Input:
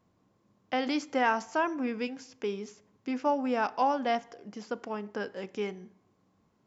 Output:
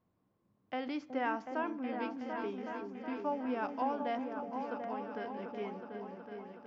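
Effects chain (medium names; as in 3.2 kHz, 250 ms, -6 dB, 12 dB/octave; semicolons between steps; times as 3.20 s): distance through air 210 m; delay with an opening low-pass 370 ms, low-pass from 400 Hz, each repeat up 2 oct, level -3 dB; trim -7.5 dB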